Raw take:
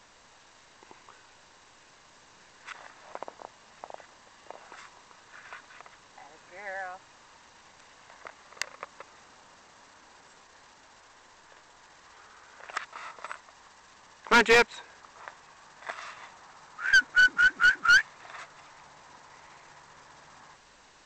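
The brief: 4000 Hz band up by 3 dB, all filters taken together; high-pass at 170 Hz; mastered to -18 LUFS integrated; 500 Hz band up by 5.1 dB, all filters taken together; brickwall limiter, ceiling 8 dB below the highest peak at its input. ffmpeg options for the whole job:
-af "highpass=170,equalizer=f=500:t=o:g=5.5,equalizer=f=4k:t=o:g=4,volume=9dB,alimiter=limit=-5dB:level=0:latency=1"

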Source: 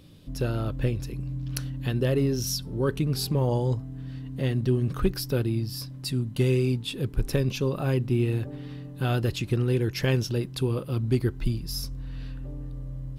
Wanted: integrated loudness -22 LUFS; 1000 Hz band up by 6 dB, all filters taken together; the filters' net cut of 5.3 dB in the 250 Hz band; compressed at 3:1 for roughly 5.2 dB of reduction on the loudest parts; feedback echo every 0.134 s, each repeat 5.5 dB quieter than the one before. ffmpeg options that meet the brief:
-af "equalizer=f=250:t=o:g=-8.5,equalizer=f=1k:t=o:g=8.5,acompressor=threshold=-27dB:ratio=3,aecho=1:1:134|268|402|536|670|804|938:0.531|0.281|0.149|0.079|0.0419|0.0222|0.0118,volume=9.5dB"

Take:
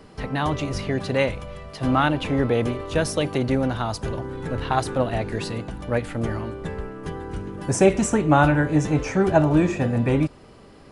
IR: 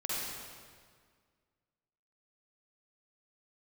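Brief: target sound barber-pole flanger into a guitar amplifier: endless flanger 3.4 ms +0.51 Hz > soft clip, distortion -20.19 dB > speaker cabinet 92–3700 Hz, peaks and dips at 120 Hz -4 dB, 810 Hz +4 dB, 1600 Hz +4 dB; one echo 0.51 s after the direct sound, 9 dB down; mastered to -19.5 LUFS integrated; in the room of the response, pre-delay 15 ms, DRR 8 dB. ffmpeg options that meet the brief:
-filter_complex "[0:a]aecho=1:1:510:0.355,asplit=2[a][b];[1:a]atrim=start_sample=2205,adelay=15[c];[b][c]afir=irnorm=-1:irlink=0,volume=-13.5dB[d];[a][d]amix=inputs=2:normalize=0,asplit=2[e][f];[f]adelay=3.4,afreqshift=0.51[g];[e][g]amix=inputs=2:normalize=1,asoftclip=threshold=-11.5dB,highpass=92,equalizer=f=120:t=q:w=4:g=-4,equalizer=f=810:t=q:w=4:g=4,equalizer=f=1.6k:t=q:w=4:g=4,lowpass=f=3.7k:w=0.5412,lowpass=f=3.7k:w=1.3066,volume=6.5dB"

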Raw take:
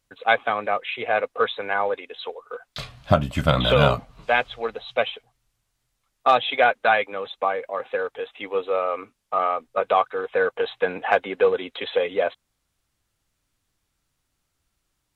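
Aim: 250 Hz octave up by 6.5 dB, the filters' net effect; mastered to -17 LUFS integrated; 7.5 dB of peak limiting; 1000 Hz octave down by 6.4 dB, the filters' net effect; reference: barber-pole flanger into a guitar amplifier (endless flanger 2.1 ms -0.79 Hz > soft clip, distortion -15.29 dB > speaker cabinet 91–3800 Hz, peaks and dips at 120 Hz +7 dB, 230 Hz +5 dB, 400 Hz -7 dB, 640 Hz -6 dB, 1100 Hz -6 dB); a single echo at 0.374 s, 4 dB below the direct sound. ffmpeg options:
-filter_complex "[0:a]equalizer=f=250:t=o:g=6,equalizer=f=1k:t=o:g=-5,alimiter=limit=-10.5dB:level=0:latency=1,aecho=1:1:374:0.631,asplit=2[a][b];[b]adelay=2.1,afreqshift=-0.79[c];[a][c]amix=inputs=2:normalize=1,asoftclip=threshold=-18.5dB,highpass=91,equalizer=f=120:t=q:w=4:g=7,equalizer=f=230:t=q:w=4:g=5,equalizer=f=400:t=q:w=4:g=-7,equalizer=f=640:t=q:w=4:g=-6,equalizer=f=1.1k:t=q:w=4:g=-6,lowpass=f=3.8k:w=0.5412,lowpass=f=3.8k:w=1.3066,volume=14dB"

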